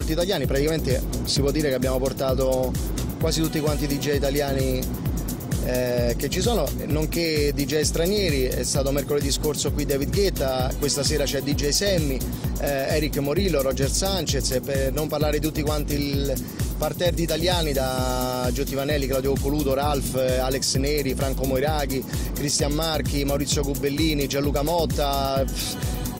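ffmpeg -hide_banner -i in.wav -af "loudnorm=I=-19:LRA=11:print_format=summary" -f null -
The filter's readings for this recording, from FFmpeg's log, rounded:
Input Integrated:    -23.6 LUFS
Input True Peak:      -9.2 dBTP
Input LRA:             1.2 LU
Input Threshold:     -33.6 LUFS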